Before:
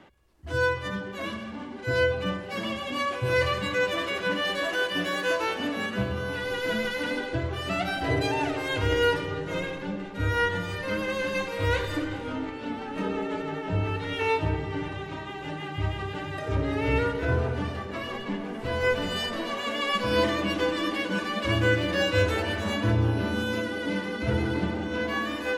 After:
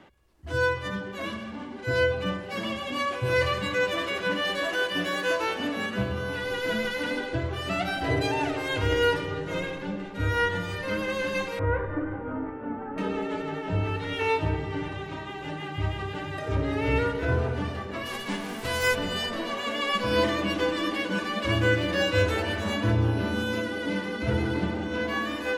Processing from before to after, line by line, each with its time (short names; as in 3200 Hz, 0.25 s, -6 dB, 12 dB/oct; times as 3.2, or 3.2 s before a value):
11.59–12.98 LPF 1600 Hz 24 dB/oct
18.05–18.94 spectral whitening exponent 0.6